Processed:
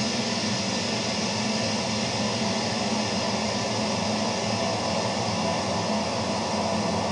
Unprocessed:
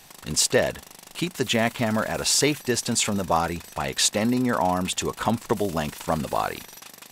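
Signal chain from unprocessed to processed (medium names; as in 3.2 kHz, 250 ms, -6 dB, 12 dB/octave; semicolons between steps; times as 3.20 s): frequency axis rescaled in octaves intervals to 90%; Paulstretch 43×, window 1.00 s, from 3.07 s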